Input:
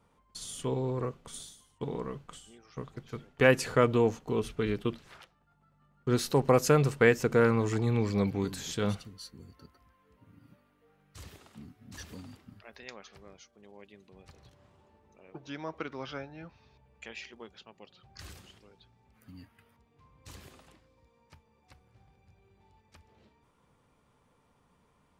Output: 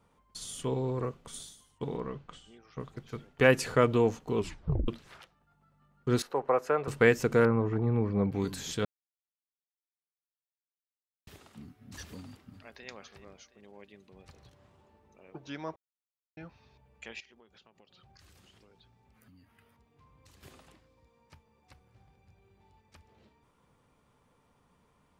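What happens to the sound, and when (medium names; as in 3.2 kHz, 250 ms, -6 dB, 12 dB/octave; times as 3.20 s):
1.97–2.80 s: low-pass 4.6 kHz
4.38 s: tape stop 0.50 s
6.22–6.88 s: three-band isolator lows -20 dB, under 420 Hz, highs -21 dB, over 2 kHz
7.45–8.32 s: low-pass 1.3 kHz
8.85–11.27 s: mute
12.17–12.88 s: echo throw 360 ms, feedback 50%, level -13 dB
15.76–16.37 s: mute
17.20–20.43 s: compression 8:1, threshold -56 dBFS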